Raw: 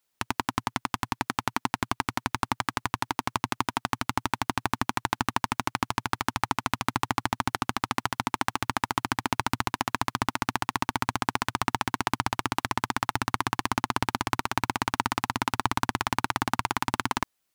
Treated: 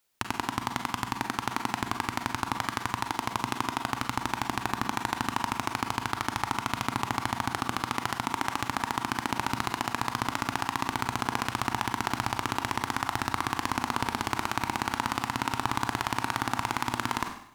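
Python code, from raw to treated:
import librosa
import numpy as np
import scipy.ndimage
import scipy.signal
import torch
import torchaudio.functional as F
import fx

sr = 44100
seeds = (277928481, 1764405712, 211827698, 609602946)

p1 = fx.rev_schroeder(x, sr, rt60_s=0.66, comb_ms=33, drr_db=9.5)
p2 = fx.over_compress(p1, sr, threshold_db=-33.0, ratio=-1.0)
p3 = p1 + (p2 * librosa.db_to_amplitude(-2.5))
y = p3 * librosa.db_to_amplitude(-4.5)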